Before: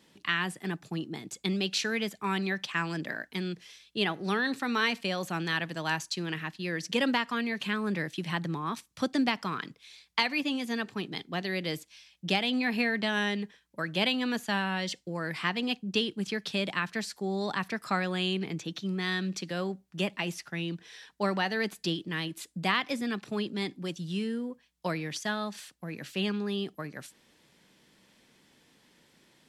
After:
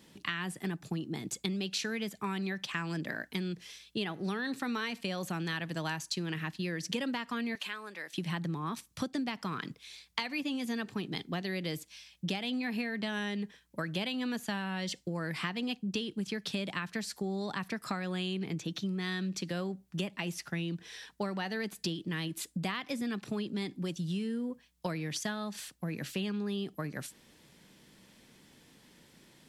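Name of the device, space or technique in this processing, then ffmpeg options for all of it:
ASMR close-microphone chain: -filter_complex "[0:a]lowshelf=f=250:g=7,acompressor=threshold=-33dB:ratio=6,highshelf=f=8k:g=6,asettb=1/sr,asplit=3[a][b][c];[a]atrim=end=7.554[d];[b]atrim=start=7.55:end=8.14,asetpts=PTS-STARTPTS,afade=t=in:d=0.004:c=qsin,afade=t=out:st=0.586:d=0.004:c=qsin,highpass=650[e];[c]atrim=start=8.136[f];[d][e]acrossfade=d=0.004:c1=hsin:c2=qsin[g];[g][f]acrossfade=d=0.004:c1=qsin:c2=hsin,volume=1dB"

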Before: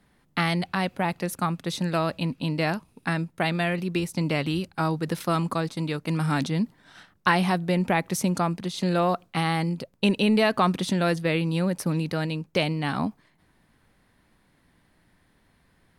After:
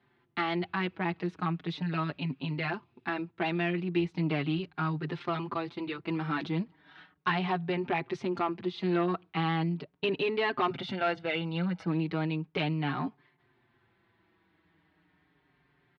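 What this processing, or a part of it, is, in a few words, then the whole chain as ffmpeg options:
barber-pole flanger into a guitar amplifier: -filter_complex "[0:a]asettb=1/sr,asplit=3[a][b][c];[a]atrim=end=10.704[d];[b]atrim=start=10.7:end=11.86,asetpts=PTS-STARTPTS,afade=t=in:d=0.004:c=qsin,afade=t=out:st=1.156:d=0.004:c=qsin,aecho=1:1:1.4:0.68,atrim=end_sample=51156[e];[c]atrim=start=11.856[f];[d][e]acrossfade=d=0.004:c1=hsin:c2=qsin[g];[g][f]acrossfade=d=0.004:c1=qsin:c2=hsin,asplit=2[h][i];[i]adelay=5.3,afreqshift=-0.37[j];[h][j]amix=inputs=2:normalize=1,asoftclip=type=tanh:threshold=-20dB,highpass=110,equalizer=f=220:t=q:w=4:g=-9,equalizer=f=360:t=q:w=4:g=6,equalizer=f=540:t=q:w=4:g=-9,lowpass=f=3.5k:w=0.5412,lowpass=f=3.5k:w=1.3066"

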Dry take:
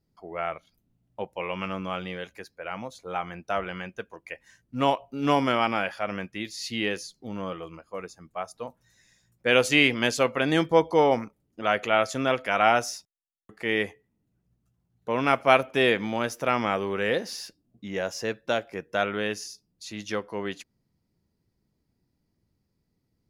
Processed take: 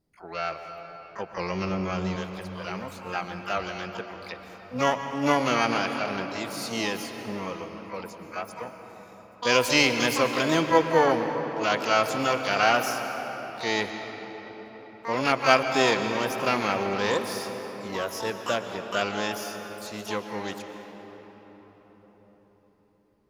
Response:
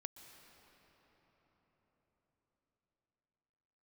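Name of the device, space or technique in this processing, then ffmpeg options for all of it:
shimmer-style reverb: -filter_complex "[0:a]asettb=1/sr,asplit=3[a][b][c];[a]atrim=end=1.324[d];[b]atrim=start=1.32:end=2.16,asetpts=PTS-STARTPTS,afade=t=in:d=0.004:c=qsin,afade=t=out:st=0.836:d=0.004:c=qsin,aemphasis=mode=reproduction:type=bsi[e];[c]atrim=start=2.156[f];[d][e]acrossfade=d=0.004:c1=hsin:c2=qsin[g];[g][f]acrossfade=d=0.004:c1=qsin:c2=hsin,asplit=2[h][i];[i]asetrate=88200,aresample=44100,atempo=0.5,volume=-5dB[j];[h][j]amix=inputs=2:normalize=0[k];[1:a]atrim=start_sample=2205[l];[k][l]afir=irnorm=-1:irlink=0,volume=3.5dB"

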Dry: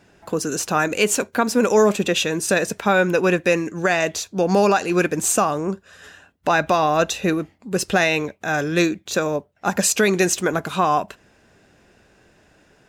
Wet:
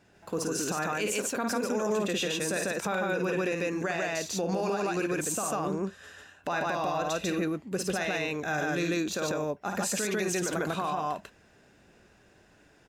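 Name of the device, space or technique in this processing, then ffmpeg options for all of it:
stacked limiters: -af "aecho=1:1:52.48|145.8:0.447|1,alimiter=limit=-6dB:level=0:latency=1:release=336,alimiter=limit=-13dB:level=0:latency=1:release=67,volume=-8dB"

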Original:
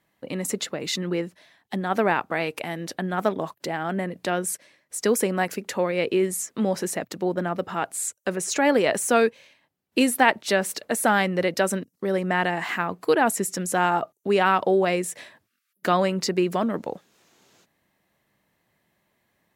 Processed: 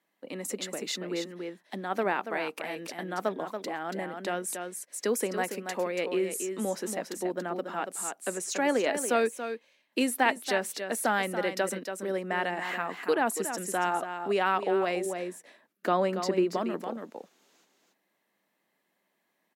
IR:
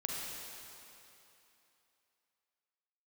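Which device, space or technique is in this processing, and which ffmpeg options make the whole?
ducked delay: -filter_complex "[0:a]asplit=3[a][b][c];[b]adelay=282,volume=-4dB[d];[c]apad=whole_len=874708[e];[d][e]sidechaincompress=threshold=-23dB:ratio=4:attack=46:release=1070[f];[a][f]amix=inputs=2:normalize=0,highpass=f=210:w=0.5412,highpass=f=210:w=1.3066,asettb=1/sr,asplit=3[g][h][i];[g]atrim=end=15.064[j];[h]atrim=start=15.06:end=16.57,asetpts=PTS-STARTPTS,afade=t=in:d=0.004:c=qsin,afade=t=out:st=1.506:d=0.004:c=qsin,tiltshelf=f=1.3k:g=4[k];[i]atrim=start=16.566[l];[j][k]acrossfade=d=0.004:c1=hsin:c2=qsin[m];[m][l]acrossfade=d=0.004:c1=qsin:c2=hsin,volume=-6.5dB"

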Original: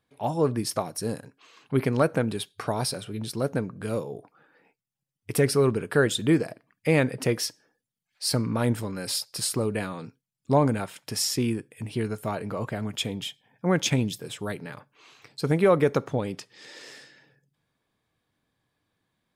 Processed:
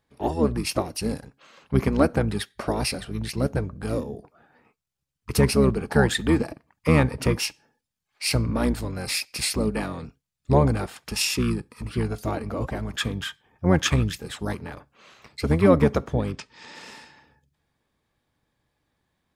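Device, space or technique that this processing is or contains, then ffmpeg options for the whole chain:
octave pedal: -filter_complex "[0:a]asplit=2[a][b];[b]asetrate=22050,aresample=44100,atempo=2,volume=-1dB[c];[a][c]amix=inputs=2:normalize=0,asettb=1/sr,asplit=3[d][e][f];[d]atrim=end=16.314[g];[e]atrim=start=16.31:end=16.75,asetpts=PTS-STARTPTS,afade=t=in:d=0.004:c=qsin,afade=t=out:st=0.436:d=0.004:c=qsin,lowpass=f=8.1k:w=0.5412,lowpass=f=8.1k:w=1.3066[h];[f]atrim=start=16.746[i];[g][h]acrossfade=d=0.004:c1=hsin:c2=qsin[j];[j][i]acrossfade=d=0.004:c1=qsin:c2=hsin"

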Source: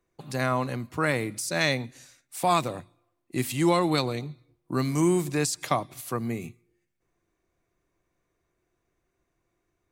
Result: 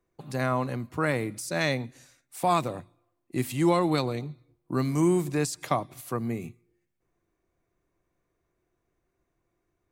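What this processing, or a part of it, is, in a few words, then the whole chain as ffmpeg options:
behind a face mask: -af "highshelf=f=2.3k:g=-8,highshelf=f=7.1k:g=5"

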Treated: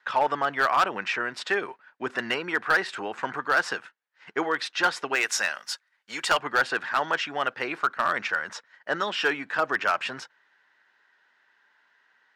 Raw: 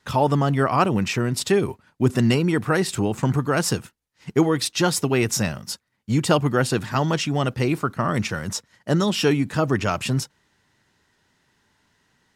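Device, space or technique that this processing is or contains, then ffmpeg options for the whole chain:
megaphone: -filter_complex "[0:a]asettb=1/sr,asplit=3[a][b][c];[a]atrim=end=5.154[d];[b]atrim=start=5.15:end=6.39,asetpts=PTS-STARTPTS,afade=t=in:d=0.004:c=qsin,afade=t=out:st=1.236:d=0.004:c=qsin,aemphasis=mode=production:type=riaa[e];[c]atrim=start=6.386[f];[d][e]acrossfade=d=0.004:c1=hsin:c2=qsin[g];[g][f]acrossfade=d=0.004:c1=qsin:c2=hsin,highpass=680,lowpass=3.1k,equalizer=f=1.6k:t=o:w=0.47:g=8.5,asoftclip=type=hard:threshold=-15dB"

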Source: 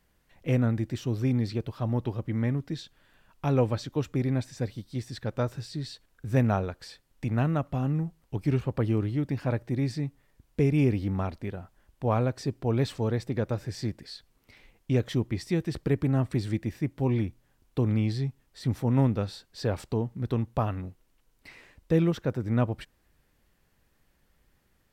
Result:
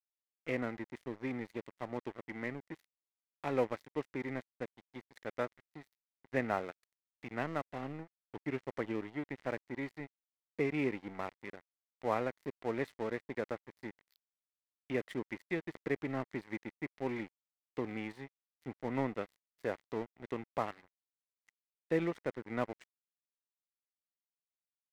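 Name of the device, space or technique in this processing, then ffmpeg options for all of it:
pocket radio on a weak battery: -af "highpass=310,lowpass=3.1k,aeval=exprs='sgn(val(0))*max(abs(val(0))-0.00794,0)':c=same,equalizer=f=2k:t=o:w=0.31:g=10,volume=-4dB"

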